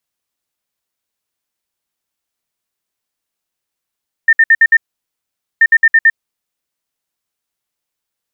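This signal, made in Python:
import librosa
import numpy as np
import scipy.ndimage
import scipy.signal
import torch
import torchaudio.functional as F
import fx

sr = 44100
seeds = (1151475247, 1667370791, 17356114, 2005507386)

y = fx.beep_pattern(sr, wave='sine', hz=1810.0, on_s=0.05, off_s=0.06, beeps=5, pause_s=0.84, groups=2, level_db=-4.0)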